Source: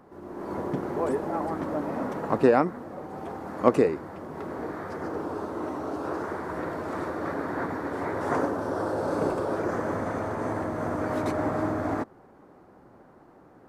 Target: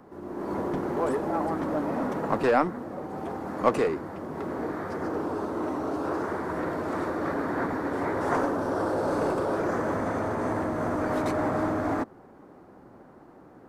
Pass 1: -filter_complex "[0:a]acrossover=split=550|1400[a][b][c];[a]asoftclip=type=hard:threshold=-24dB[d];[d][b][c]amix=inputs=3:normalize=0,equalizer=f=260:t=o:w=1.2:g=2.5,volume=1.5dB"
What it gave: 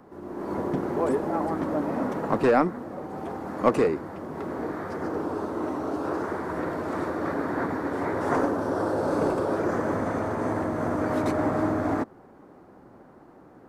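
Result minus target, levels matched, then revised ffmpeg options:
hard clip: distortion -4 dB
-filter_complex "[0:a]acrossover=split=550|1400[a][b][c];[a]asoftclip=type=hard:threshold=-30.5dB[d];[d][b][c]amix=inputs=3:normalize=0,equalizer=f=260:t=o:w=1.2:g=2.5,volume=1.5dB"

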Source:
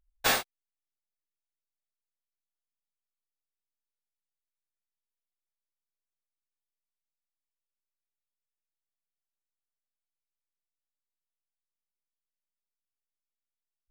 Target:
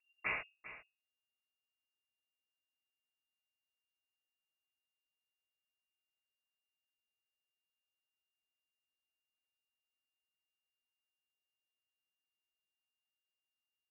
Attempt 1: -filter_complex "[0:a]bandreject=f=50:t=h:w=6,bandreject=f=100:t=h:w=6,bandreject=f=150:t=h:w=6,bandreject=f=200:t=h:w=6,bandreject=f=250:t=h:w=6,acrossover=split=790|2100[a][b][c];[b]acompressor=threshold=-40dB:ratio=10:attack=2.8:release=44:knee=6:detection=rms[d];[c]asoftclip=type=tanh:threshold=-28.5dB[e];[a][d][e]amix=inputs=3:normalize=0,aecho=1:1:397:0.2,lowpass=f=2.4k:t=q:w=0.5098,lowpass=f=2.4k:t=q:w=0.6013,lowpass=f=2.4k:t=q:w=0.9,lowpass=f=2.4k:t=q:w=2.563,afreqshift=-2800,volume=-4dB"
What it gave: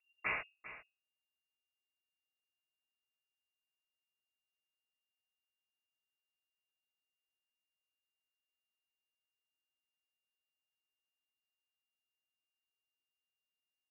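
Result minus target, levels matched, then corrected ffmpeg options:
compressor: peak gain reduction -5.5 dB
-filter_complex "[0:a]bandreject=f=50:t=h:w=6,bandreject=f=100:t=h:w=6,bandreject=f=150:t=h:w=6,bandreject=f=200:t=h:w=6,bandreject=f=250:t=h:w=6,acrossover=split=790|2100[a][b][c];[b]acompressor=threshold=-46dB:ratio=10:attack=2.8:release=44:knee=6:detection=rms[d];[c]asoftclip=type=tanh:threshold=-28.5dB[e];[a][d][e]amix=inputs=3:normalize=0,aecho=1:1:397:0.2,lowpass=f=2.4k:t=q:w=0.5098,lowpass=f=2.4k:t=q:w=0.6013,lowpass=f=2.4k:t=q:w=0.9,lowpass=f=2.4k:t=q:w=2.563,afreqshift=-2800,volume=-4dB"

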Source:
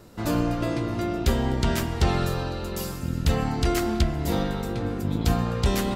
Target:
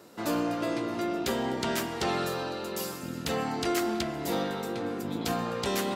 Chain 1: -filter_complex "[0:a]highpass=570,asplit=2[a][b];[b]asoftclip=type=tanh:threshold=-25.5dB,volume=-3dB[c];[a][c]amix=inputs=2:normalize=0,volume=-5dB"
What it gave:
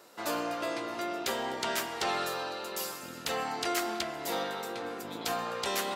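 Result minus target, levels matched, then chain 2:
250 Hz band -6.5 dB
-filter_complex "[0:a]highpass=260,asplit=2[a][b];[b]asoftclip=type=tanh:threshold=-25.5dB,volume=-3dB[c];[a][c]amix=inputs=2:normalize=0,volume=-5dB"

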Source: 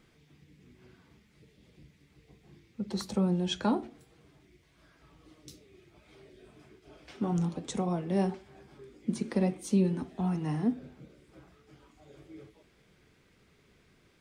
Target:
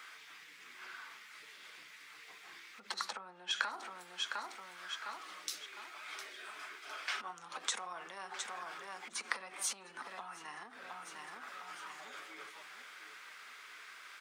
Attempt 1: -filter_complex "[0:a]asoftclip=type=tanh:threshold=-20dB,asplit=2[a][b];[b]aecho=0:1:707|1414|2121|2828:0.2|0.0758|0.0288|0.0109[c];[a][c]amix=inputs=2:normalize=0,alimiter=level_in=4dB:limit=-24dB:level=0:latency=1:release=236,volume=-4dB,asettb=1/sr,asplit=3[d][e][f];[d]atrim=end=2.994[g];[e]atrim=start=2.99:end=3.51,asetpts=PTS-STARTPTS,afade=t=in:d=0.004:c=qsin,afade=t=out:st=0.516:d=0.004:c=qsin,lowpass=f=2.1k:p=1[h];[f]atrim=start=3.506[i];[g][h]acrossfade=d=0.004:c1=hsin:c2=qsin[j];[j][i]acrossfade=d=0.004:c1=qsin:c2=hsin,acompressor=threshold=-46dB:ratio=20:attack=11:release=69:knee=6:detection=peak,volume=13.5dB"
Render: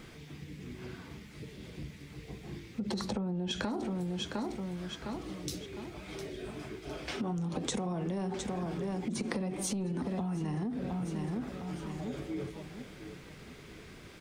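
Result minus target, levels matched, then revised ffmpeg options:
1000 Hz band -6.0 dB
-filter_complex "[0:a]asoftclip=type=tanh:threshold=-20dB,asplit=2[a][b];[b]aecho=0:1:707|1414|2121|2828:0.2|0.0758|0.0288|0.0109[c];[a][c]amix=inputs=2:normalize=0,alimiter=level_in=4dB:limit=-24dB:level=0:latency=1:release=236,volume=-4dB,asettb=1/sr,asplit=3[d][e][f];[d]atrim=end=2.994[g];[e]atrim=start=2.99:end=3.51,asetpts=PTS-STARTPTS,afade=t=in:d=0.004:c=qsin,afade=t=out:st=0.516:d=0.004:c=qsin,lowpass=f=2.1k:p=1[h];[f]atrim=start=3.506[i];[g][h]acrossfade=d=0.004:c1=hsin:c2=qsin[j];[j][i]acrossfade=d=0.004:c1=qsin:c2=hsin,acompressor=threshold=-46dB:ratio=20:attack=11:release=69:knee=6:detection=peak,highpass=f=1.3k:t=q:w=2.2,volume=13.5dB"

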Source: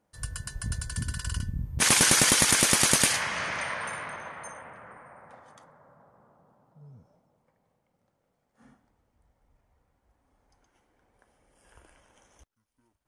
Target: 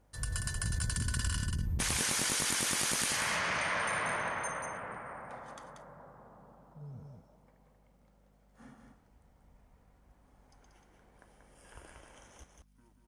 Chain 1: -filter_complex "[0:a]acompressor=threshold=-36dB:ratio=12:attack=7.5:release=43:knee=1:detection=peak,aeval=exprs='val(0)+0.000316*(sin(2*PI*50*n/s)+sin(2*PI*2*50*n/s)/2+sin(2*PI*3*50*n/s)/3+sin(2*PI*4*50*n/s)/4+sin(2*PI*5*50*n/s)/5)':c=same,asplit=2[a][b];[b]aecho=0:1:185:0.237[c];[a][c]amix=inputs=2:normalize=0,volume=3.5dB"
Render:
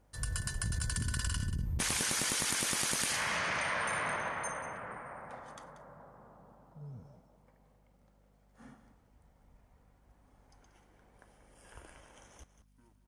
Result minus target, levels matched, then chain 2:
echo-to-direct -7.5 dB
-filter_complex "[0:a]acompressor=threshold=-36dB:ratio=12:attack=7.5:release=43:knee=1:detection=peak,aeval=exprs='val(0)+0.000316*(sin(2*PI*50*n/s)+sin(2*PI*2*50*n/s)/2+sin(2*PI*3*50*n/s)/3+sin(2*PI*4*50*n/s)/4+sin(2*PI*5*50*n/s)/5)':c=same,asplit=2[a][b];[b]aecho=0:1:185:0.562[c];[a][c]amix=inputs=2:normalize=0,volume=3.5dB"

